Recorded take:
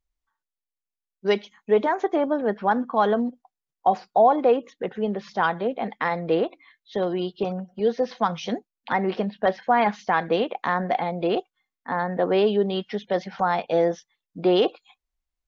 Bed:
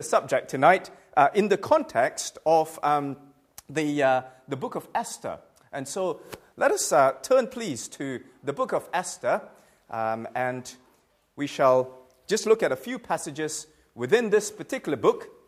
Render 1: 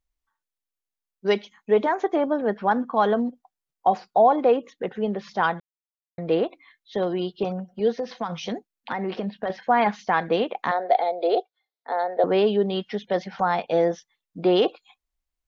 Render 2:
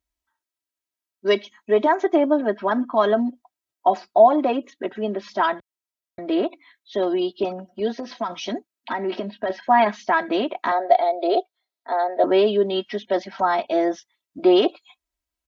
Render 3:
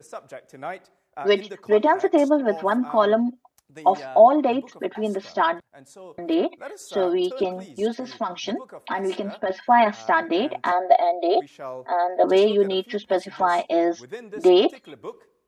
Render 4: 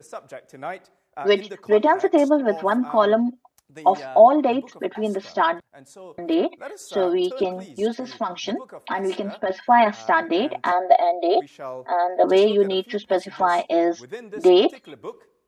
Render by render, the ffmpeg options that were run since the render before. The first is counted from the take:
ffmpeg -i in.wav -filter_complex "[0:a]asettb=1/sr,asplit=3[link_01][link_02][link_03];[link_01]atrim=end=7.954[link_04];[link_02]atrim=start=7.95:end=9.5,asetpts=PTS-STARTPTS,afade=type=in:duration=0.004:curve=qsin,afade=type=out:start_time=1.546:duration=0.004:curve=qsin,acompressor=threshold=-23dB:ratio=6:attack=3.2:release=140:knee=1:detection=peak[link_05];[link_03]atrim=start=9.496[link_06];[link_04][link_05]acrossfade=duration=0.004:curve1=hsin:curve2=qsin[link_07];[link_07][link_06]acrossfade=duration=0.004:curve1=qsin:curve2=hsin,asettb=1/sr,asplit=3[link_08][link_09][link_10];[link_08]atrim=end=10.714[link_11];[link_09]atrim=start=10.71:end=12.24,asetpts=PTS-STARTPTS,afade=type=in:duration=0.004:curve=qsin,afade=type=out:start_time=1.526:duration=0.004:curve=qsin,highpass=frequency=390:width=0.5412,highpass=frequency=390:width=1.3066,equalizer=frequency=440:width_type=q:width=4:gain=6,equalizer=frequency=680:width_type=q:width=4:gain=7,equalizer=frequency=1100:width_type=q:width=4:gain=-9,equalizer=frequency=1700:width_type=q:width=4:gain=-6,equalizer=frequency=2700:width_type=q:width=4:gain=-9,equalizer=frequency=4000:width_type=q:width=4:gain=7,lowpass=frequency=5200:width=0.5412,lowpass=frequency=5200:width=1.3066[link_12];[link_10]atrim=start=12.236[link_13];[link_11][link_12]acrossfade=duration=0.004:curve1=hsin:curve2=qsin[link_14];[link_14][link_13]acrossfade=duration=0.004:curve1=qsin:curve2=hsin,asplit=3[link_15][link_16][link_17];[link_15]atrim=end=5.6,asetpts=PTS-STARTPTS,afade=type=out:start_time=5.596:duration=0.004:curve=hsin[link_18];[link_16]atrim=start=5.6:end=6.18,asetpts=PTS-STARTPTS,volume=0[link_19];[link_17]atrim=start=6.18,asetpts=PTS-STARTPTS,afade=type=in:duration=0.004:curve=hsin[link_20];[link_18][link_19][link_20]concat=n=3:v=0:a=1" out.wav
ffmpeg -i in.wav -af "highpass=64,aecho=1:1:3.1:0.98" out.wav
ffmpeg -i in.wav -i bed.wav -filter_complex "[1:a]volume=-15dB[link_01];[0:a][link_01]amix=inputs=2:normalize=0" out.wav
ffmpeg -i in.wav -af "volume=1dB" out.wav

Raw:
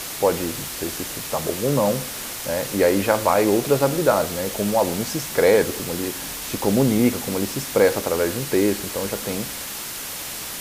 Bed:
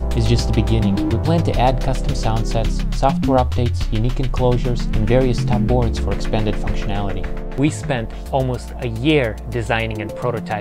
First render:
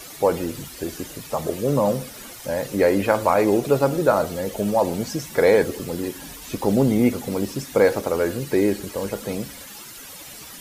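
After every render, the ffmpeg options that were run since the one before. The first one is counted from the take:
ffmpeg -i in.wav -af "afftdn=noise_reduction=12:noise_floor=-32" out.wav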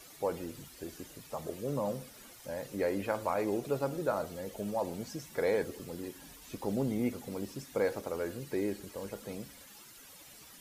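ffmpeg -i in.wav -af "volume=-14dB" out.wav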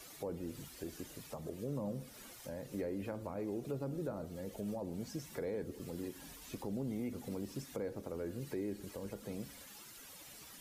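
ffmpeg -i in.wav -filter_complex "[0:a]acrossover=split=380[link_01][link_02];[link_01]alimiter=level_in=9.5dB:limit=-24dB:level=0:latency=1,volume=-9.5dB[link_03];[link_02]acompressor=threshold=-48dB:ratio=5[link_04];[link_03][link_04]amix=inputs=2:normalize=0" out.wav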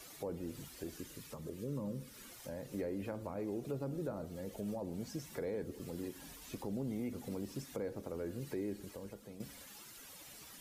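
ffmpeg -i in.wav -filter_complex "[0:a]asettb=1/sr,asplit=3[link_01][link_02][link_03];[link_01]atrim=end=0.984[link_04];[link_02]atrim=start=0.98:end=2.32,asetpts=PTS-STARTPTS,afade=type=in:duration=0.004:curve=qsin,afade=type=out:start_time=1.336:duration=0.004:curve=qsin,equalizer=frequency=710:width_type=o:width=0.37:gain=-14.5[link_05];[link_03]atrim=start=2.316[link_06];[link_04][link_05]acrossfade=duration=0.004:curve1=hsin:curve2=qsin[link_07];[link_07][link_06]acrossfade=duration=0.004:curve1=qsin:curve2=hsin,asplit=2[link_08][link_09];[link_08]atrim=end=9.4,asetpts=PTS-STARTPTS,afade=type=out:start_time=8.71:duration=0.69:silence=0.316228[link_10];[link_09]atrim=start=9.4,asetpts=PTS-STARTPTS,afade=type=in:duration=0.004:curve=hsin:silence=0.316228[link_11];[link_10][link_11]concat=n=2:v=0:a=1" out.wav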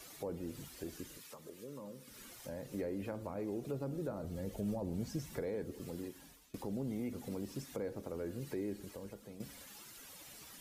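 ffmpeg -i in.wav -filter_complex "[0:a]asettb=1/sr,asplit=3[link_01][link_02][link_03];[link_01]atrim=end=1.174[link_04];[link_02]atrim=start=1.17:end=2.08,asetpts=PTS-STARTPTS,afade=type=in:duration=0.004:curve=qsin,afade=type=out:start_time=0.906:duration=0.004:curve=qsin,highpass=frequency=650:poles=1[link_05];[link_03]atrim=start=2.076[link_06];[link_04][link_05]acrossfade=duration=0.004:curve1=hsin:curve2=qsin[link_07];[link_07][link_06]acrossfade=duration=0.004:curve1=qsin:curve2=hsin,asettb=1/sr,asplit=3[link_08][link_09][link_10];[link_08]atrim=end=4.244[link_11];[link_09]atrim=start=4.24:end=5.41,asetpts=PTS-STARTPTS,afade=type=in:duration=0.004:curve=qsin,afade=type=out:start_time=1.166:duration=0.004:curve=qsin,lowshelf=frequency=140:gain=10.5[link_12];[link_10]atrim=start=5.406[link_13];[link_11][link_12]acrossfade=duration=0.004:curve1=hsin:curve2=qsin[link_14];[link_14][link_13]acrossfade=duration=0.004:curve1=qsin:curve2=hsin,asplit=2[link_15][link_16];[link_15]atrim=end=6.54,asetpts=PTS-STARTPTS,afade=type=out:start_time=5.92:duration=0.62:silence=0.0944061[link_17];[link_16]atrim=start=6.54,asetpts=PTS-STARTPTS,afade=type=in:duration=0.004:curve=hsin:silence=0.0944061[link_18];[link_17][link_18]concat=n=2:v=0:a=1" out.wav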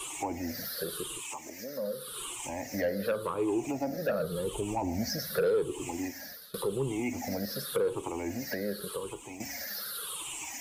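ffmpeg -i in.wav -filter_complex "[0:a]afftfilt=real='re*pow(10,20/40*sin(2*PI*(0.66*log(max(b,1)*sr/1024/100)/log(2)-(-0.88)*(pts-256)/sr)))':imag='im*pow(10,20/40*sin(2*PI*(0.66*log(max(b,1)*sr/1024/100)/log(2)-(-0.88)*(pts-256)/sr)))':win_size=1024:overlap=0.75,acrossover=split=430[link_01][link_02];[link_02]aeval=exprs='0.0562*sin(PI/2*2.24*val(0)/0.0562)':channel_layout=same[link_03];[link_01][link_03]amix=inputs=2:normalize=0" out.wav

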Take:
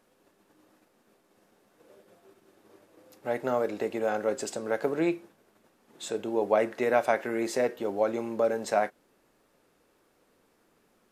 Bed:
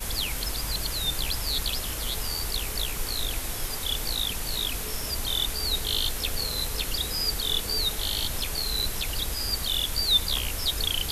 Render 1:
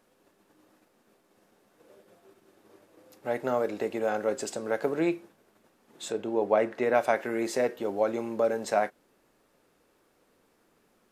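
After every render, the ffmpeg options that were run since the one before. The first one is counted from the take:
ffmpeg -i in.wav -filter_complex "[0:a]asettb=1/sr,asplit=3[link_01][link_02][link_03];[link_01]atrim=end=6.124[link_04];[link_02]atrim=start=6.12:end=6.95,asetpts=PTS-STARTPTS,afade=type=in:duration=0.004:curve=qsin,afade=type=out:start_time=0.826:duration=0.004:curve=qsin,aemphasis=mode=reproduction:type=cd[link_05];[link_03]atrim=start=6.946[link_06];[link_04][link_05]acrossfade=duration=0.004:curve1=hsin:curve2=qsin[link_07];[link_07][link_06]acrossfade=duration=0.004:curve1=qsin:curve2=hsin" out.wav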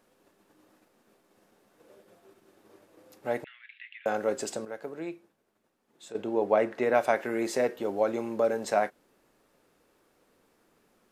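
ffmpeg -i in.wav -filter_complex "[0:a]asettb=1/sr,asplit=3[link_01][link_02][link_03];[link_01]atrim=end=3.444[link_04];[link_02]atrim=start=3.44:end=4.06,asetpts=PTS-STARTPTS,afade=type=in:duration=0.004:curve=qsin,afade=type=out:start_time=0.616:duration=0.004:curve=qsin,asuperpass=centerf=2500:order=8:qfactor=1.5[link_05];[link_03]atrim=start=4.056[link_06];[link_04][link_05]acrossfade=duration=0.004:curve1=hsin:curve2=qsin[link_07];[link_07][link_06]acrossfade=duration=0.004:curve1=qsin:curve2=hsin,asplit=3[link_08][link_09][link_10];[link_08]atrim=end=4.652[link_11];[link_09]atrim=start=4.648:end=6.152,asetpts=PTS-STARTPTS,volume=-10.5dB[link_12];[link_10]atrim=start=6.148[link_13];[link_11][link_12]acrossfade=duration=0.004:curve1=hsin:curve2=hsin[link_14];[link_14][link_13]acrossfade=duration=0.004:curve1=hsin:curve2=hsin" out.wav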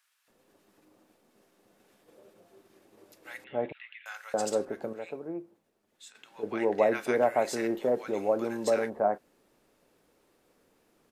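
ffmpeg -i in.wav -filter_complex "[0:a]acrossover=split=1300[link_01][link_02];[link_01]adelay=280[link_03];[link_03][link_02]amix=inputs=2:normalize=0" out.wav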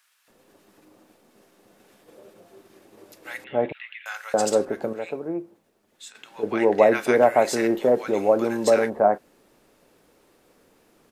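ffmpeg -i in.wav -af "volume=8dB" out.wav

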